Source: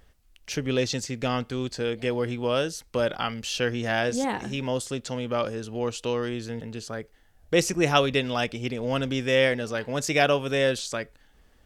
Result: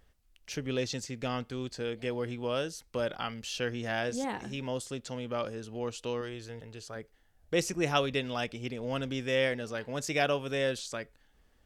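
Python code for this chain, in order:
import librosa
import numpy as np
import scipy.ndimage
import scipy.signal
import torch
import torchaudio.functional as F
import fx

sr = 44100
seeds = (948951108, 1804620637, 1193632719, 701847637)

y = fx.peak_eq(x, sr, hz=220.0, db=-8.5, octaves=0.81, at=(6.21, 6.96))
y = y * 10.0 ** (-7.0 / 20.0)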